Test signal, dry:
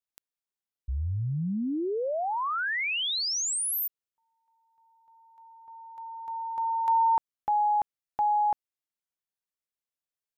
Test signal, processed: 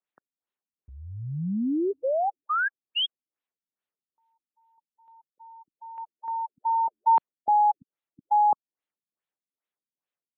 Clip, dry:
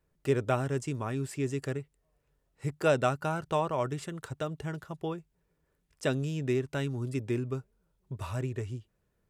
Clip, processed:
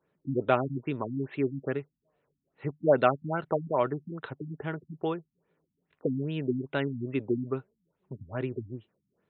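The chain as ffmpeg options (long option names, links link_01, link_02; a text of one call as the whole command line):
ffmpeg -i in.wav -af "highpass=200,lowpass=7700,afftfilt=real='re*lt(b*sr/1024,260*pow(4300/260,0.5+0.5*sin(2*PI*2.4*pts/sr)))':imag='im*lt(b*sr/1024,260*pow(4300/260,0.5+0.5*sin(2*PI*2.4*pts/sr)))':win_size=1024:overlap=0.75,volume=5dB" out.wav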